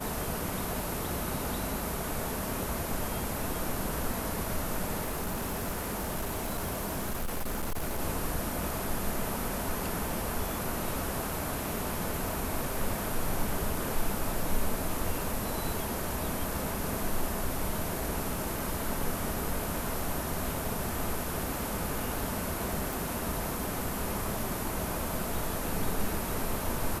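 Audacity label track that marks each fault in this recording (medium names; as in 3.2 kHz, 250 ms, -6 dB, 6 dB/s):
5.030000	8.000000	clipped -28.5 dBFS
22.930000	22.930000	pop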